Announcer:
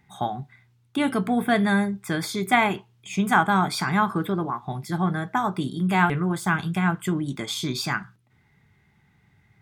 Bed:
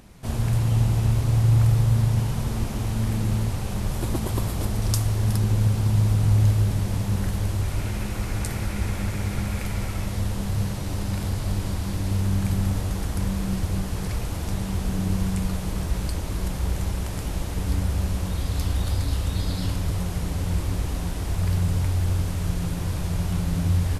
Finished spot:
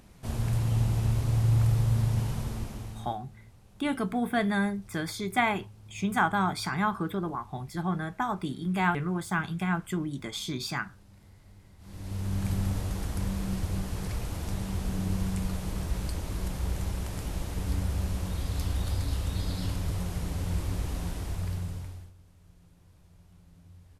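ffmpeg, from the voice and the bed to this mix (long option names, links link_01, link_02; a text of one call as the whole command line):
ffmpeg -i stem1.wav -i stem2.wav -filter_complex "[0:a]adelay=2850,volume=-6dB[link_01];[1:a]volume=17.5dB,afade=type=out:start_time=2.3:duration=0.89:silence=0.0707946,afade=type=in:start_time=11.78:duration=0.71:silence=0.0707946,afade=type=out:start_time=21.09:duration=1.03:silence=0.0501187[link_02];[link_01][link_02]amix=inputs=2:normalize=0" out.wav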